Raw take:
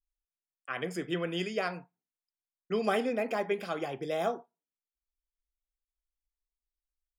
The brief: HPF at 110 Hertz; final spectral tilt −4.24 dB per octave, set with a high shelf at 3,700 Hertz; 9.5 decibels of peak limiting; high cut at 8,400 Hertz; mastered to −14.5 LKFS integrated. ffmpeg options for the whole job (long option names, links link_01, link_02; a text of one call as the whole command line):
ffmpeg -i in.wav -af "highpass=110,lowpass=8400,highshelf=frequency=3700:gain=-5,volume=23dB,alimiter=limit=-4dB:level=0:latency=1" out.wav